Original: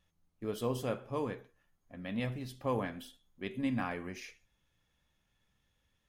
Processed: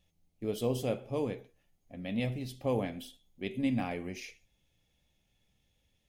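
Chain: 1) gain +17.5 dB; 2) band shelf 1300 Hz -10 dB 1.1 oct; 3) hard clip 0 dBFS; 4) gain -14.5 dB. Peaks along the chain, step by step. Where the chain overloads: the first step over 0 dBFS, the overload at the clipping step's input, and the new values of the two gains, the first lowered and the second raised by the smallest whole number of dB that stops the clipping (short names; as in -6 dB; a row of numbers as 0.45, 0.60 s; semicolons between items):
-4.0, -4.5, -4.5, -19.0 dBFS; no overload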